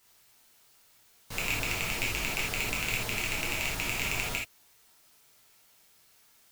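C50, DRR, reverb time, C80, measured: 4.5 dB, -4.5 dB, not exponential, 12.5 dB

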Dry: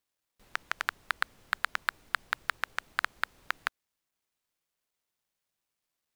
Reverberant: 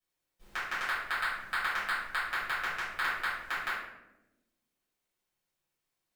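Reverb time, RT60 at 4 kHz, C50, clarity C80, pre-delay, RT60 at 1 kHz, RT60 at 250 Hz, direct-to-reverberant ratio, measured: 1.0 s, 0.55 s, 0.5 dB, 4.5 dB, 4 ms, 0.80 s, 1.7 s, -12.5 dB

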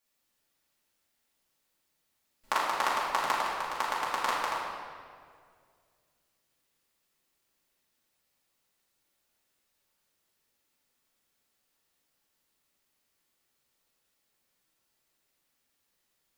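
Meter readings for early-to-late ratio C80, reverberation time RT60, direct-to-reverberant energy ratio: 1.5 dB, 2.1 s, -7.5 dB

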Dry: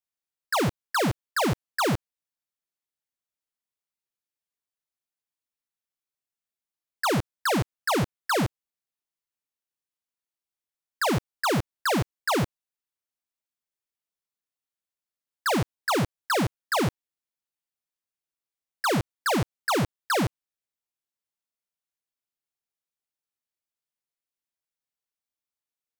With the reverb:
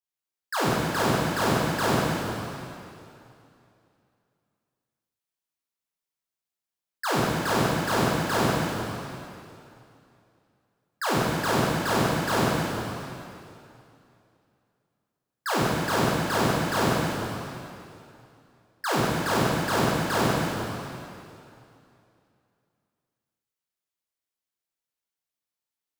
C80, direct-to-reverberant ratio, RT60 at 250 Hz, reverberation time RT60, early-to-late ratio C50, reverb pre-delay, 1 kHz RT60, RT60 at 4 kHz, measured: -1.5 dB, -7.0 dB, 2.6 s, 2.7 s, -4.0 dB, 8 ms, 2.7 s, 2.5 s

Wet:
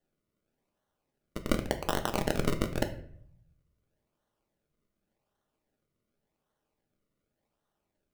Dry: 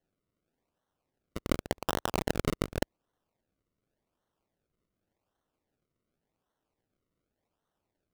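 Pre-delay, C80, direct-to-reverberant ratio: 3 ms, 15.5 dB, 5.0 dB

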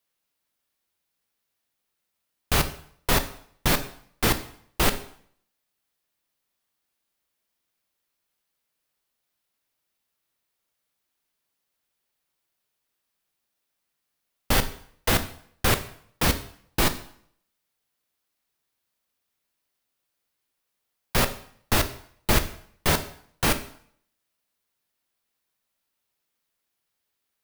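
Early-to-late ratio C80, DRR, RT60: 17.0 dB, 9.0 dB, 0.60 s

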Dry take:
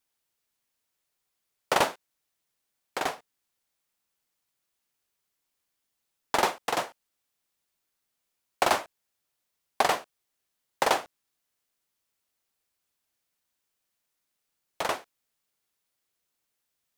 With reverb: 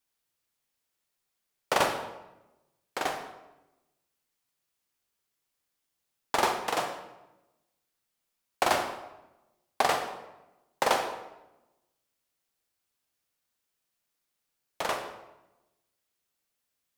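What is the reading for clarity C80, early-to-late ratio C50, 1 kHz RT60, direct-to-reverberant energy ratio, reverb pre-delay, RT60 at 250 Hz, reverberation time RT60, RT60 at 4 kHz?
9.0 dB, 7.0 dB, 0.90 s, 5.0 dB, 26 ms, 1.2 s, 0.95 s, 0.70 s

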